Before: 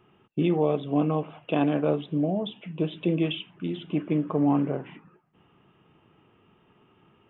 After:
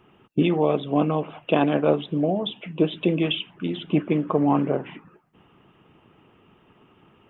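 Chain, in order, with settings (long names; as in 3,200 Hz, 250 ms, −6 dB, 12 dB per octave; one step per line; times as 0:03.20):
harmonic and percussive parts rebalanced percussive +7 dB
level +1 dB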